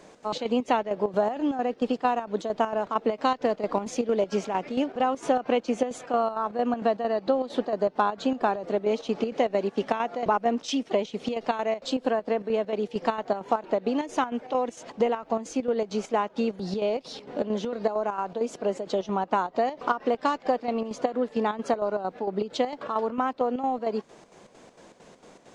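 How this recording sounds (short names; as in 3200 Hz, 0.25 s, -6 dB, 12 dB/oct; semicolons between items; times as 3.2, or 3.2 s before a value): chopped level 4.4 Hz, depth 60%, duty 65%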